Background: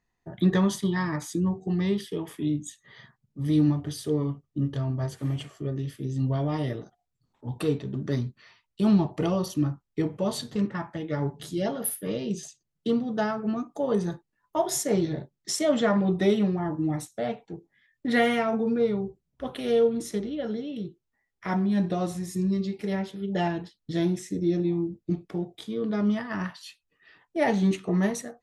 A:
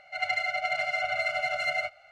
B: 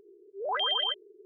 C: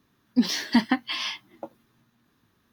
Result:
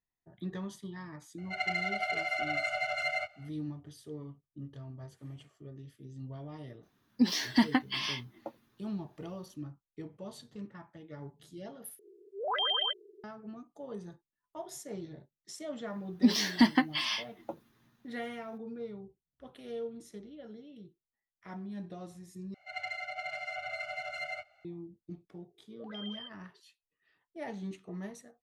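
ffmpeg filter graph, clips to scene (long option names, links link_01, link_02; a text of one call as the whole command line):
ffmpeg -i bed.wav -i cue0.wav -i cue1.wav -i cue2.wav -filter_complex "[1:a]asplit=2[link_01][link_02];[3:a]asplit=2[link_03][link_04];[2:a]asplit=2[link_05][link_06];[0:a]volume=-17dB[link_07];[link_06]equalizer=frequency=1000:width_type=o:width=1.2:gain=-12[link_08];[link_07]asplit=3[link_09][link_10][link_11];[link_09]atrim=end=11.994[link_12];[link_05]atrim=end=1.25,asetpts=PTS-STARTPTS,volume=-2dB[link_13];[link_10]atrim=start=13.236:end=22.544[link_14];[link_02]atrim=end=2.11,asetpts=PTS-STARTPTS,volume=-10dB[link_15];[link_11]atrim=start=24.646[link_16];[link_01]atrim=end=2.11,asetpts=PTS-STARTPTS,volume=-4dB,afade=type=in:duration=0.004:curve=hsin,afade=type=out:start_time=2.106:duration=0.004:curve=hsin,adelay=1380[link_17];[link_03]atrim=end=2.72,asetpts=PTS-STARTPTS,volume=-4.5dB,afade=type=in:duration=0.004:curve=hsin,afade=type=out:start_time=2.716:duration=0.004:curve=hsin,adelay=6830[link_18];[link_04]atrim=end=2.72,asetpts=PTS-STARTPTS,volume=-2.5dB,afade=type=in:duration=0.004:curve=hsin,afade=type=out:start_time=2.716:duration=0.004:curve=hsin,adelay=15860[link_19];[link_08]atrim=end=1.25,asetpts=PTS-STARTPTS,volume=-15dB,afade=type=in:duration=0.004:curve=hsin,afade=type=out:start_time=1.246:duration=0.004:curve=hsin,adelay=25350[link_20];[link_12][link_13]acrossfade=duration=0.004:curve1=hsin:curve2=hsin[link_21];[link_21][link_14]acrossfade=duration=0.004:curve1=hsin:curve2=hsin[link_22];[link_22][link_15]acrossfade=duration=0.004:curve1=hsin:curve2=hsin[link_23];[link_23][link_16]acrossfade=duration=0.004:curve1=hsin:curve2=hsin[link_24];[link_24][link_17][link_18][link_19][link_20]amix=inputs=5:normalize=0" out.wav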